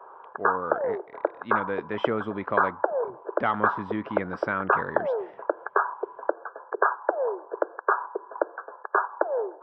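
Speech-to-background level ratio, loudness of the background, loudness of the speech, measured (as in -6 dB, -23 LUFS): -3.5 dB, -28.5 LUFS, -32.0 LUFS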